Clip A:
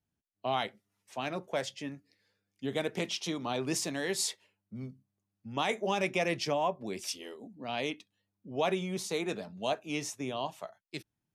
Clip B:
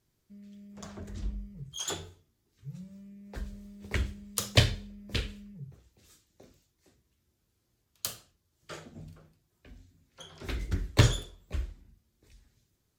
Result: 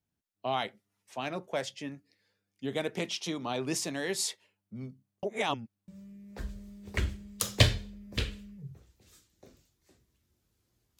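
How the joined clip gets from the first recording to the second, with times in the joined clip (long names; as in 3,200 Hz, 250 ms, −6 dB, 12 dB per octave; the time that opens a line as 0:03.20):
clip A
0:05.23–0:05.88: reverse
0:05.88: continue with clip B from 0:02.85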